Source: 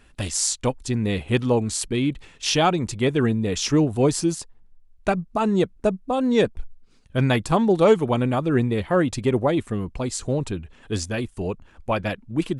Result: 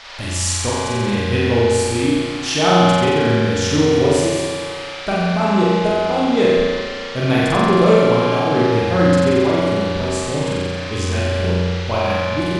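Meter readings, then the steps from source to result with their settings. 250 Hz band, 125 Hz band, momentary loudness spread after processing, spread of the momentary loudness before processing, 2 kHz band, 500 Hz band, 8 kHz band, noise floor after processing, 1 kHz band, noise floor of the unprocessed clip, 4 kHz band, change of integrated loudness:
+4.5 dB, +5.5 dB, 8 LU, 9 LU, +8.5 dB, +7.0 dB, +2.5 dB, -27 dBFS, +7.5 dB, -53 dBFS, +7.5 dB, +6.0 dB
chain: band noise 540–4900 Hz -38 dBFS; flutter echo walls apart 7.7 m, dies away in 1.4 s; spring tank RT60 1.9 s, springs 34 ms, chirp 35 ms, DRR -2.5 dB; gain -2 dB

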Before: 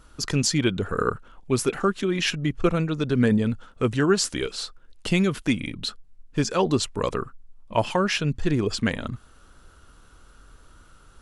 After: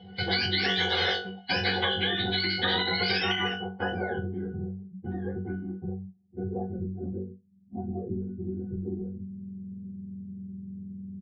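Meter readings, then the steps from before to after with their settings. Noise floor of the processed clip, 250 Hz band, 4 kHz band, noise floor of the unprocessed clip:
-55 dBFS, -8.5 dB, +3.0 dB, -53 dBFS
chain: spectrum mirrored in octaves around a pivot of 800 Hz; comb 6 ms, depth 59%; small resonant body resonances 750/2100 Hz, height 14 dB, ringing for 45 ms; gate -43 dBFS, range -9 dB; low-pass sweep 4500 Hz -> 260 Hz, 4.56–6.99; tilt +2 dB/oct; on a send: flutter echo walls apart 3.6 m, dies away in 0.24 s; on the sum: limiter -11.5 dBFS, peak gain reduction 9.5 dB; high shelf 7700 Hz -10 dB; low-pass sweep 3900 Hz -> 220 Hz, 3.17–4.39; octave resonator F#, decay 0.19 s; spectral compressor 10:1

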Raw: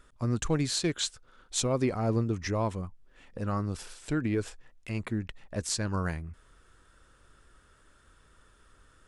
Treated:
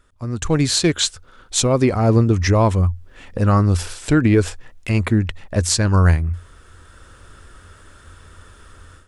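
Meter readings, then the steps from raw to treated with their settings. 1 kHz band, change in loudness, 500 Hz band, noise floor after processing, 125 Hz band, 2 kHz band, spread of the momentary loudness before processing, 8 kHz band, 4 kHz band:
+13.0 dB, +13.5 dB, +12.5 dB, -48 dBFS, +15.5 dB, +13.0 dB, 12 LU, +12.0 dB, +12.0 dB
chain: bell 87 Hz +12.5 dB 0.26 oct; AGC gain up to 15 dB

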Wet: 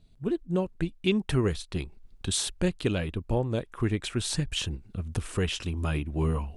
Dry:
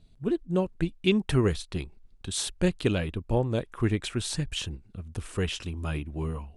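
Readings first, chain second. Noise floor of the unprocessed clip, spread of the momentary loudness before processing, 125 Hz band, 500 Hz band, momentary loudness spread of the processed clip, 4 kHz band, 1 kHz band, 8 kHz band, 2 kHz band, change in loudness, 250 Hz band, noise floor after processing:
-57 dBFS, 11 LU, 0.0 dB, -1.5 dB, 8 LU, +1.0 dB, 0.0 dB, +2.0 dB, -0.5 dB, -0.5 dB, -1.0 dB, -56 dBFS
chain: recorder AGC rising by 8.8 dB/s; gain -2 dB

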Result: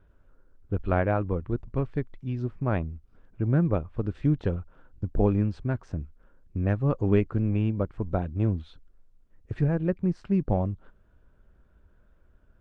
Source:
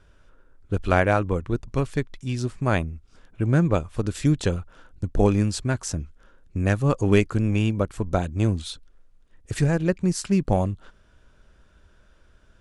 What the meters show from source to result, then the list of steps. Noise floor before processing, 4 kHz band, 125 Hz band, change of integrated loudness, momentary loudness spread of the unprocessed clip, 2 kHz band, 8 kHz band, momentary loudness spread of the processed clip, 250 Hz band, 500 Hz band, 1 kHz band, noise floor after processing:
-57 dBFS, under -15 dB, -3.0 dB, -4.0 dB, 13 LU, -10.0 dB, under -30 dB, 12 LU, -3.5 dB, -4.5 dB, -6.5 dB, -61 dBFS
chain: vibrato 4.8 Hz 10 cents; tape spacing loss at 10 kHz 41 dB; gain -2.5 dB; Opus 48 kbps 48000 Hz

